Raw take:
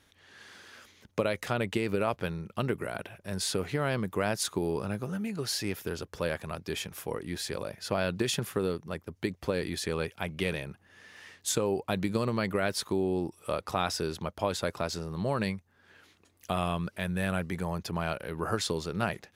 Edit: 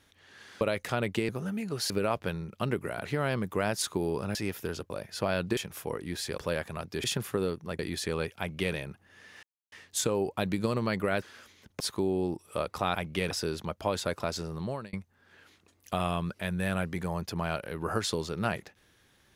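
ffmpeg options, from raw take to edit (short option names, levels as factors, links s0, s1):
-filter_complex "[0:a]asplit=17[s0][s1][s2][s3][s4][s5][s6][s7][s8][s9][s10][s11][s12][s13][s14][s15][s16];[s0]atrim=end=0.612[s17];[s1]atrim=start=1.188:end=1.872[s18];[s2]atrim=start=4.958:end=5.572[s19];[s3]atrim=start=1.868:end=3.022[s20];[s4]atrim=start=3.658:end=4.962[s21];[s5]atrim=start=5.568:end=6.122[s22];[s6]atrim=start=7.588:end=8.262[s23];[s7]atrim=start=6.778:end=7.592[s24];[s8]atrim=start=6.118:end=6.782[s25];[s9]atrim=start=8.258:end=9.012[s26];[s10]atrim=start=9.588:end=11.23,asetpts=PTS-STARTPTS,afade=t=out:st=1.638:d=0.004:c=hsin,apad=pad_dur=0.29[s27];[s11]atrim=start=11.23:end=12.732,asetpts=PTS-STARTPTS,afade=t=in:d=0.004:c=hsin[s28];[s12]atrim=start=0.608:end=1.192[s29];[s13]atrim=start=12.728:end=13.882[s30];[s14]atrim=start=10.188:end=10.552[s31];[s15]atrim=start=13.878:end=15.5,asetpts=PTS-STARTPTS,afade=t=out:st=1.252:d=0.37[s32];[s16]atrim=start=15.5,asetpts=PTS-STARTPTS,afade=t=in:d=0.004:c=hsin[s33];[s17][s18]acrossfade=d=0.004:c1=hsin:c2=hsin[s34];[s34][s19]acrossfade=d=0.004:c1=hsin:c2=hsin[s35];[s35][s20]acrossfade=d=0.004:c1=hsin:c2=hsin[s36];[s36][s21]acrossfade=d=0.004:c1=hsin:c2=hsin[s37];[s37][s22]acrossfade=d=0.004:c1=hsin:c2=hsin[s38];[s38][s23]acrossfade=d=0.004:c1=hsin:c2=hsin[s39];[s39][s24]acrossfade=d=0.004:c1=hsin:c2=hsin[s40];[s40][s25]acrossfade=d=0.004:c1=hsin:c2=hsin[s41];[s41][s26]acrossfade=d=0.004:c1=hsin:c2=hsin[s42];[s27][s28]concat=n=2:v=0:a=1[s43];[s42][s43]acrossfade=d=0.004:c1=hsin:c2=hsin[s44];[s44][s29]acrossfade=d=0.004:c1=hsin:c2=hsin[s45];[s45][s30]acrossfade=d=0.004:c1=hsin:c2=hsin[s46];[s46][s31]acrossfade=d=0.004:c1=hsin:c2=hsin[s47];[s32][s33]concat=n=2:v=0:a=1[s48];[s47][s48]acrossfade=d=0.004:c1=hsin:c2=hsin"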